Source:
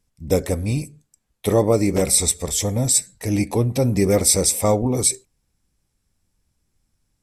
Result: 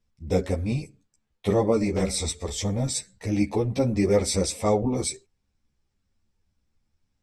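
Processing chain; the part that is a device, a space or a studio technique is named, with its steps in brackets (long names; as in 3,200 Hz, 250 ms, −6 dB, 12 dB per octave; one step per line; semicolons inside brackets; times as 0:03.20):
string-machine ensemble chorus (string-ensemble chorus; low-pass filter 5,200 Hz 12 dB per octave)
level −1 dB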